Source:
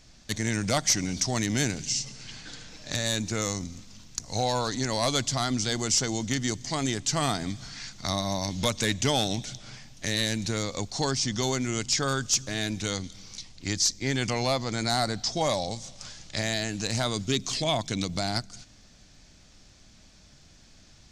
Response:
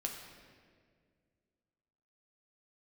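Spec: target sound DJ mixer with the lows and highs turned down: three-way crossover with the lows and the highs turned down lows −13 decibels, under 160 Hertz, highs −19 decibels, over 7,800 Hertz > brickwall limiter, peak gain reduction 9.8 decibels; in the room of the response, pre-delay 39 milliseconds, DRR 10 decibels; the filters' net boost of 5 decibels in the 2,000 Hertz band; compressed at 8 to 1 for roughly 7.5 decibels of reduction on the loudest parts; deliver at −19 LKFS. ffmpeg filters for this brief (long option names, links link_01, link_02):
-filter_complex "[0:a]equalizer=frequency=2000:width_type=o:gain=6,acompressor=threshold=-27dB:ratio=8,asplit=2[link_01][link_02];[1:a]atrim=start_sample=2205,adelay=39[link_03];[link_02][link_03]afir=irnorm=-1:irlink=0,volume=-10.5dB[link_04];[link_01][link_04]amix=inputs=2:normalize=0,acrossover=split=160 7800:gain=0.224 1 0.112[link_05][link_06][link_07];[link_05][link_06][link_07]amix=inputs=3:normalize=0,volume=16.5dB,alimiter=limit=-7dB:level=0:latency=1"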